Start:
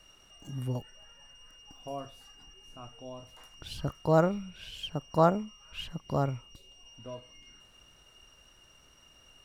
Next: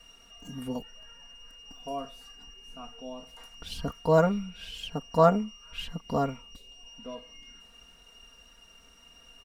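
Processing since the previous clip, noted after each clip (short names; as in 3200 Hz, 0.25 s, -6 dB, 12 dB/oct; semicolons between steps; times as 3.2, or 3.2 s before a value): comb 4.3 ms, depth 95%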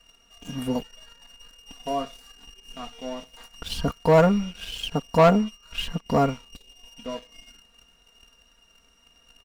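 sample leveller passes 2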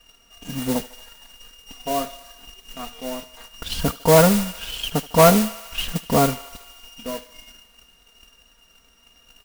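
modulation noise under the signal 10 dB; thinning echo 76 ms, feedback 80%, high-pass 510 Hz, level -18 dB; gain +3 dB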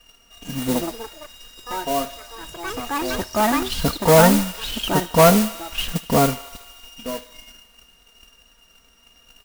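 in parallel at -9 dB: overloaded stage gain 13.5 dB; on the sum: echoes that change speed 0.309 s, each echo +5 st, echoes 3, each echo -6 dB; gain -1.5 dB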